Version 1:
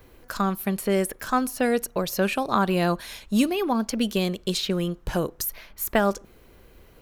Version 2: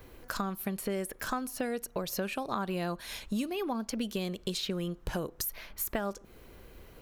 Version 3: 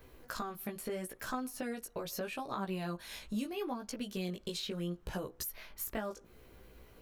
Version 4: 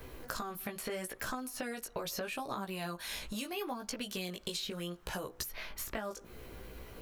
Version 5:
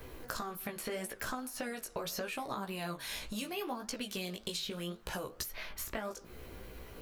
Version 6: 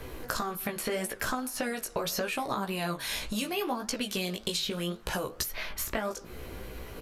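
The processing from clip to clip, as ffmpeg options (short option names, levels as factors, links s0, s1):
-af "acompressor=threshold=0.0251:ratio=4"
-af "flanger=delay=15.5:depth=3.1:speed=0.76,volume=0.794"
-filter_complex "[0:a]acrossover=split=620|6100[s0][s1][s2];[s0]acompressor=threshold=0.00251:ratio=4[s3];[s1]acompressor=threshold=0.00355:ratio=4[s4];[s2]acompressor=threshold=0.002:ratio=4[s5];[s3][s4][s5]amix=inputs=3:normalize=0,volume=2.82"
-af "flanger=delay=8.4:depth=6.9:regen=83:speed=1.8:shape=triangular,volume=1.68"
-af "aresample=32000,aresample=44100,volume=2.24"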